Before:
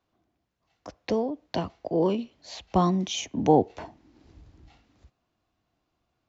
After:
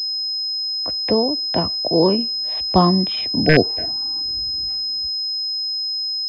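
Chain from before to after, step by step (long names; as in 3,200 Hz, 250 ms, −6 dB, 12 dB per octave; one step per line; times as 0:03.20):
wrap-around overflow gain 9 dB
healed spectral selection 0:03.48–0:04.18, 740–1,500 Hz before
switching amplifier with a slow clock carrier 5,100 Hz
level +8 dB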